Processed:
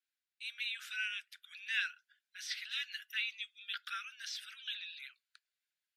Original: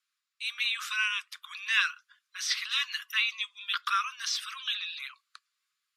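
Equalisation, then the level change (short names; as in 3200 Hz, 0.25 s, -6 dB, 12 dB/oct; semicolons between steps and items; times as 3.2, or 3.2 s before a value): elliptic high-pass 1500 Hz, stop band 40 dB; bell 6000 Hz -5 dB 1.3 oct; -7.5 dB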